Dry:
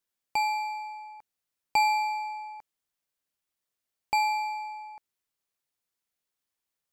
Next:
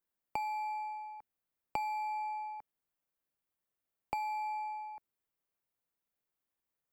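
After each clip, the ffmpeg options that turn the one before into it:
ffmpeg -i in.wav -filter_complex "[0:a]equalizer=frequency=5600:width_type=o:width=2.4:gain=-12,acrossover=split=270[link_01][link_02];[link_02]acompressor=threshold=-34dB:ratio=10[link_03];[link_01][link_03]amix=inputs=2:normalize=0" out.wav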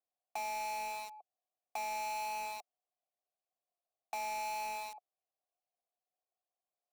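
ffmpeg -i in.wav -filter_complex "[0:a]asplit=2[link_01][link_02];[link_02]highpass=frequency=720:poles=1,volume=25dB,asoftclip=type=tanh:threshold=-18.5dB[link_03];[link_01][link_03]amix=inputs=2:normalize=0,lowpass=frequency=3700:poles=1,volume=-6dB,asplit=3[link_04][link_05][link_06];[link_04]bandpass=frequency=730:width_type=q:width=8,volume=0dB[link_07];[link_05]bandpass=frequency=1090:width_type=q:width=8,volume=-6dB[link_08];[link_06]bandpass=frequency=2440:width_type=q:width=8,volume=-9dB[link_09];[link_07][link_08][link_09]amix=inputs=3:normalize=0,acrossover=split=150|800|3700[link_10][link_11][link_12][link_13];[link_12]acrusher=bits=6:mix=0:aa=0.000001[link_14];[link_10][link_11][link_14][link_13]amix=inputs=4:normalize=0,volume=-2dB" out.wav

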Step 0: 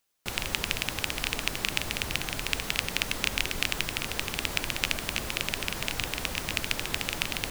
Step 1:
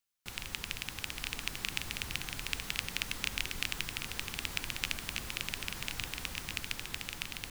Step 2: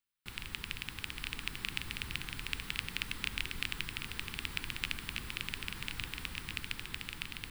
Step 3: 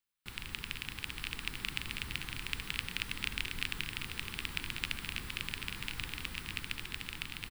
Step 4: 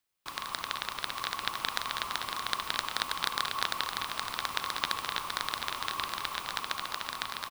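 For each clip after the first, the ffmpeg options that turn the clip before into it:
ffmpeg -i in.wav -af "equalizer=frequency=500:width_type=o:width=1.8:gain=-6,bandreject=frequency=620:width=12,dynaudnorm=framelen=230:gausssize=11:maxgain=11.5dB,volume=-9dB" out.wav
ffmpeg -i in.wav -af "equalizer=frequency=630:width_type=o:width=0.67:gain=-12,equalizer=frequency=6300:width_type=o:width=0.67:gain=-10,equalizer=frequency=16000:width_type=o:width=0.67:gain=-8" out.wav
ffmpeg -i in.wav -af "aecho=1:1:209:0.335" out.wav
ffmpeg -i in.wav -af "aeval=exprs='val(0)*sin(2*PI*1100*n/s)':channel_layout=same,volume=8dB" out.wav

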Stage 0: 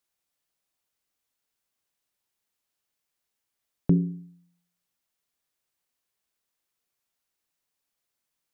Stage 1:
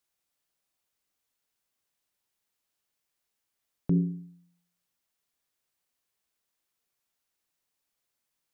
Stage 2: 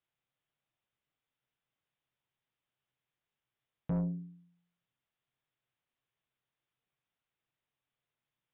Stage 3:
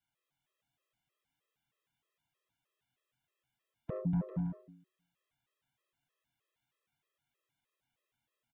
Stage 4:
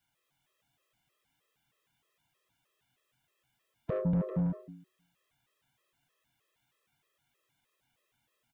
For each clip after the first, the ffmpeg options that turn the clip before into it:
ffmpeg -i in.wav -af "alimiter=limit=-16.5dB:level=0:latency=1:release=52" out.wav
ffmpeg -i in.wav -af "equalizer=frequency=130:width_type=o:width=0.42:gain=13,aresample=8000,asoftclip=type=tanh:threshold=-26dB,aresample=44100,volume=-3dB" out.wav
ffmpeg -i in.wav -af "aecho=1:1:240|396|497.4|563.3|606.2:0.631|0.398|0.251|0.158|0.1,afftfilt=real='re*gt(sin(2*PI*3.2*pts/sr)*(1-2*mod(floor(b*sr/1024/340),2)),0)':imag='im*gt(sin(2*PI*3.2*pts/sr)*(1-2*mod(floor(b*sr/1024/340),2)),0)':win_size=1024:overlap=0.75,volume=4dB" out.wav
ffmpeg -i in.wav -af "asoftclip=type=tanh:threshold=-33.5dB,volume=8.5dB" out.wav

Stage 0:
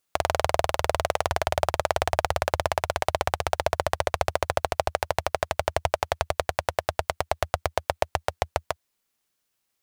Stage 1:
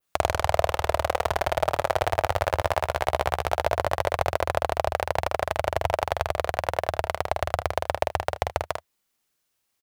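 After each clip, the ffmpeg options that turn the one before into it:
ffmpeg -i in.wav -af "adynamicequalizer=threshold=0.00282:dfrequency=6600:dqfactor=0.71:tfrequency=6600:tqfactor=0.71:attack=5:release=100:ratio=0.375:range=3:mode=cutabove:tftype=bell,aecho=1:1:48|78:0.596|0.168" out.wav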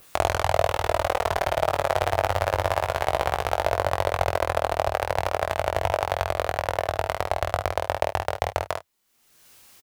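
ffmpeg -i in.wav -filter_complex "[0:a]acompressor=mode=upward:threshold=-34dB:ratio=2.5,asplit=2[link_01][link_02];[link_02]adelay=21,volume=-5.5dB[link_03];[link_01][link_03]amix=inputs=2:normalize=0" out.wav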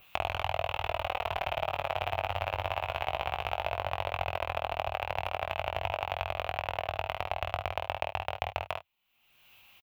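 ffmpeg -i in.wav -af "firequalizer=gain_entry='entry(120,0);entry(260,-6);entry(460,-7);entry(740,2);entry(1800,-4);entry(2600,11);entry(4800,-11);entry(9100,-17);entry(14000,-3)':delay=0.05:min_phase=1,acompressor=threshold=-24dB:ratio=2.5,volume=-4.5dB" out.wav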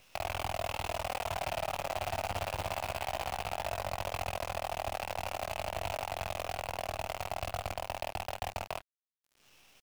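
ffmpeg -i in.wav -af "aresample=11025,asoftclip=type=tanh:threshold=-25.5dB,aresample=44100,acrusher=bits=7:dc=4:mix=0:aa=0.000001" out.wav

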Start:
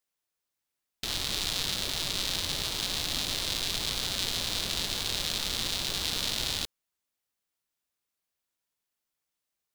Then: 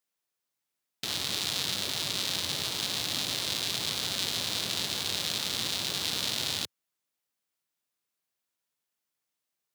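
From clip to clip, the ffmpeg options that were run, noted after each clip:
ffmpeg -i in.wav -af "highpass=frequency=94:width=0.5412,highpass=frequency=94:width=1.3066" out.wav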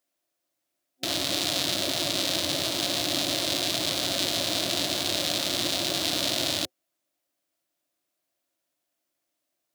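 ffmpeg -i in.wav -af "superequalizer=6b=3.16:8b=3.16,volume=3.5dB" out.wav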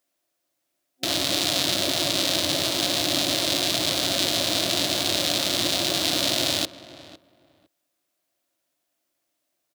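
ffmpeg -i in.wav -filter_complex "[0:a]asplit=2[link_01][link_02];[link_02]adelay=506,lowpass=frequency=1800:poles=1,volume=-16dB,asplit=2[link_03][link_04];[link_04]adelay=506,lowpass=frequency=1800:poles=1,volume=0.19[link_05];[link_01][link_03][link_05]amix=inputs=3:normalize=0,volume=3.5dB" out.wav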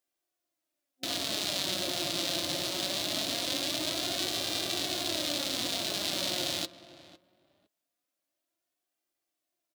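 ffmpeg -i in.wav -af "flanger=delay=2.5:depth=3.3:regen=48:speed=0.22:shape=sinusoidal,volume=-4.5dB" out.wav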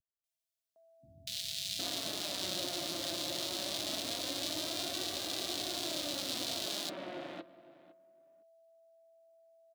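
ffmpeg -i in.wav -filter_complex "[0:a]aeval=exprs='val(0)+0.00141*sin(2*PI*660*n/s)':channel_layout=same,acrossover=split=150|2200[link_01][link_02][link_03];[link_03]adelay=240[link_04];[link_02]adelay=760[link_05];[link_01][link_05][link_04]amix=inputs=3:normalize=0,volume=-4.5dB" out.wav

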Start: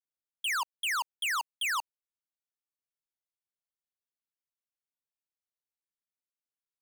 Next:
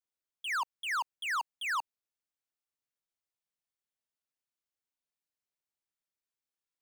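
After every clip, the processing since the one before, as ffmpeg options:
ffmpeg -i in.wav -filter_complex "[0:a]equalizer=frequency=13000:width=1.5:gain=-6,acrossover=split=430|2200[link_01][link_02][link_03];[link_03]alimiter=level_in=14.5dB:limit=-24dB:level=0:latency=1,volume=-14.5dB[link_04];[link_01][link_02][link_04]amix=inputs=3:normalize=0" out.wav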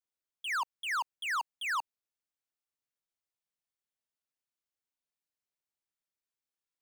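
ffmpeg -i in.wav -af anull out.wav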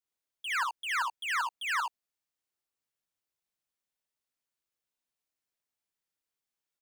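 ffmpeg -i in.wav -af "aecho=1:1:61|77:0.708|0.531" out.wav

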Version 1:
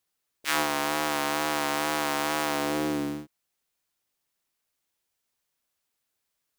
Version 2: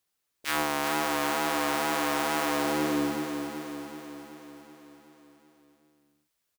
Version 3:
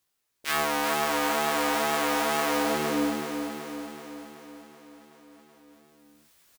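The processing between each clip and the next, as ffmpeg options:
ffmpeg -i in.wav -filter_complex "[0:a]asoftclip=type=tanh:threshold=-13.5dB,asplit=2[link_01][link_02];[link_02]aecho=0:1:378|756|1134|1512|1890|2268|2646|3024:0.447|0.264|0.155|0.0917|0.0541|0.0319|0.0188|0.0111[link_03];[link_01][link_03]amix=inputs=2:normalize=0" out.wav
ffmpeg -i in.wav -filter_complex "[0:a]areverse,acompressor=mode=upward:threshold=-49dB:ratio=2.5,areverse,asplit=2[link_01][link_02];[link_02]adelay=18,volume=-2dB[link_03];[link_01][link_03]amix=inputs=2:normalize=0" out.wav

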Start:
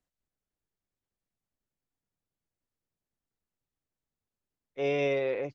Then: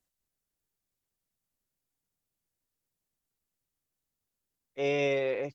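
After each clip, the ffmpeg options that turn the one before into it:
ffmpeg -i in.wav -af "aemphasis=mode=production:type=cd" out.wav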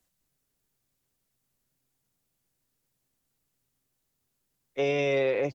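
ffmpeg -i in.wav -filter_complex "[0:a]acrossover=split=110[link_01][link_02];[link_01]asplit=8[link_03][link_04][link_05][link_06][link_07][link_08][link_09][link_10];[link_04]adelay=88,afreqshift=130,volume=-5.5dB[link_11];[link_05]adelay=176,afreqshift=260,volume=-11.2dB[link_12];[link_06]adelay=264,afreqshift=390,volume=-16.9dB[link_13];[link_07]adelay=352,afreqshift=520,volume=-22.5dB[link_14];[link_08]adelay=440,afreqshift=650,volume=-28.2dB[link_15];[link_09]adelay=528,afreqshift=780,volume=-33.9dB[link_16];[link_10]adelay=616,afreqshift=910,volume=-39.6dB[link_17];[link_03][link_11][link_12][link_13][link_14][link_15][link_16][link_17]amix=inputs=8:normalize=0[link_18];[link_02]alimiter=level_in=2.5dB:limit=-24dB:level=0:latency=1:release=47,volume=-2.5dB[link_19];[link_18][link_19]amix=inputs=2:normalize=0,volume=7.5dB" out.wav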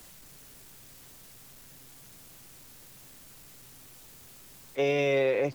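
ffmpeg -i in.wav -af "aeval=exprs='val(0)+0.5*0.00531*sgn(val(0))':channel_layout=same" out.wav

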